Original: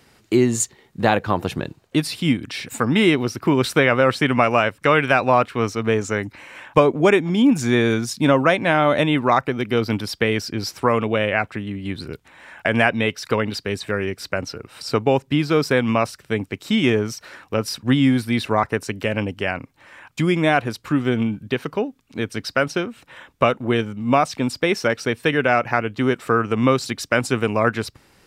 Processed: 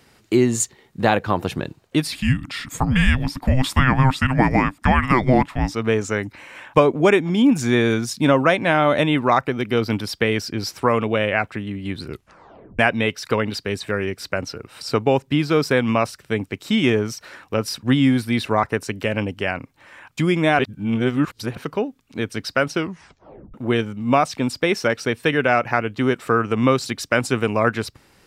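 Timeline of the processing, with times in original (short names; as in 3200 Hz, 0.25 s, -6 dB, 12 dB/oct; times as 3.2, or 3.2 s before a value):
2.12–5.74 frequency shift -390 Hz
12.09 tape stop 0.70 s
20.59–21.57 reverse
22.75 tape stop 0.79 s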